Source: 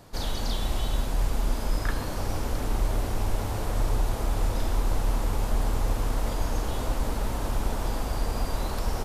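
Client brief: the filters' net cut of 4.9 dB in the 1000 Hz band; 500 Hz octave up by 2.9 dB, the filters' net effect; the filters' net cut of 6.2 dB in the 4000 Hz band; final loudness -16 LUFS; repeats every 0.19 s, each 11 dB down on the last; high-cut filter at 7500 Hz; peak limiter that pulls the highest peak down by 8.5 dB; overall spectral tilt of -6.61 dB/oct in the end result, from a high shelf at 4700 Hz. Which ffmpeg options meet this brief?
-af "lowpass=7.5k,equalizer=f=500:t=o:g=6,equalizer=f=1k:t=o:g=-8.5,equalizer=f=4k:t=o:g=-4,highshelf=f=4.7k:g=-6,alimiter=limit=-22.5dB:level=0:latency=1,aecho=1:1:190|380|570:0.282|0.0789|0.0221,volume=17dB"

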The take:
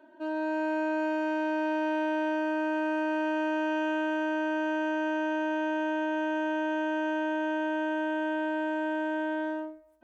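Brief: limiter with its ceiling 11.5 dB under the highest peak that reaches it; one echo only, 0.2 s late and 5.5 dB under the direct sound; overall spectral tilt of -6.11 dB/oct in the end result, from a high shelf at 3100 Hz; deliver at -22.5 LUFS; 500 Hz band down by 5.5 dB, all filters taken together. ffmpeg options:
-af "equalizer=f=500:t=o:g=-8.5,highshelf=f=3.1k:g=8,alimiter=level_in=11dB:limit=-24dB:level=0:latency=1,volume=-11dB,aecho=1:1:200:0.531,volume=18.5dB"

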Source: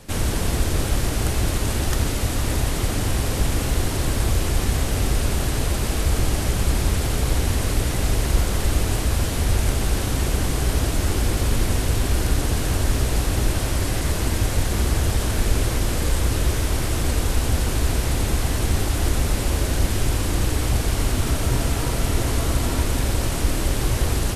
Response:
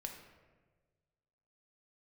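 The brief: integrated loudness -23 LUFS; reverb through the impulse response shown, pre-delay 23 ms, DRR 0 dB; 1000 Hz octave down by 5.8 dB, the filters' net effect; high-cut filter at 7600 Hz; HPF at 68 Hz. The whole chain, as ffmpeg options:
-filter_complex "[0:a]highpass=68,lowpass=7.6k,equalizer=f=1k:t=o:g=-8,asplit=2[a][b];[1:a]atrim=start_sample=2205,adelay=23[c];[b][c]afir=irnorm=-1:irlink=0,volume=2.5dB[d];[a][d]amix=inputs=2:normalize=0,volume=-0.5dB"

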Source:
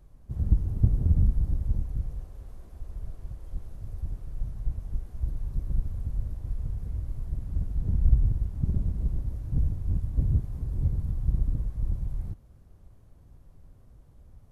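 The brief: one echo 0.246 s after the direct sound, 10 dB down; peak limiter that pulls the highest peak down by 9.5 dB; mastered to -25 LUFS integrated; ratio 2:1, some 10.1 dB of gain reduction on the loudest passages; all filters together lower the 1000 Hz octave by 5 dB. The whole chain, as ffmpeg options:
-af "equalizer=f=1k:t=o:g=-7,acompressor=threshold=-33dB:ratio=2,alimiter=level_in=3.5dB:limit=-24dB:level=0:latency=1,volume=-3.5dB,aecho=1:1:246:0.316,volume=14.5dB"

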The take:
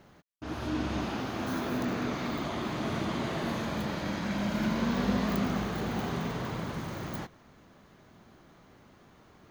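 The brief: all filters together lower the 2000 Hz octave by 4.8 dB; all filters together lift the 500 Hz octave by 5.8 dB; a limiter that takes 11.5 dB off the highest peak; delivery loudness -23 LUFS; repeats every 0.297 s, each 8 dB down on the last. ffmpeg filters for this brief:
-af "equalizer=f=500:t=o:g=8,equalizer=f=2k:t=o:g=-7,alimiter=level_in=0.5dB:limit=-24dB:level=0:latency=1,volume=-0.5dB,aecho=1:1:297|594|891|1188|1485:0.398|0.159|0.0637|0.0255|0.0102,volume=10dB"

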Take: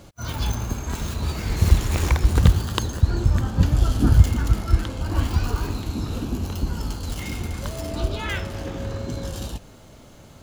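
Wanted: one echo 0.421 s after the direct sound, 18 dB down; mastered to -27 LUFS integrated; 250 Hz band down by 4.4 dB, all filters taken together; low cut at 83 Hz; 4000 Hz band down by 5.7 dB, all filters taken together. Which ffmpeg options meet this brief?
-af "highpass=83,equalizer=f=250:t=o:g=-6,equalizer=f=4k:t=o:g=-7.5,aecho=1:1:421:0.126,volume=0.5dB"

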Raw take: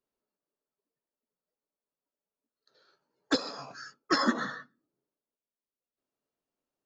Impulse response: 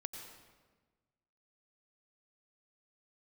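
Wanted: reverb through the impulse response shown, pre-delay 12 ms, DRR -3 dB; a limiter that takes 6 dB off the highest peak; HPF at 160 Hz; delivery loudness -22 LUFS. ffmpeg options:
-filter_complex "[0:a]highpass=160,alimiter=limit=-18.5dB:level=0:latency=1,asplit=2[a][b];[1:a]atrim=start_sample=2205,adelay=12[c];[b][c]afir=irnorm=-1:irlink=0,volume=5dB[d];[a][d]amix=inputs=2:normalize=0,volume=7.5dB"

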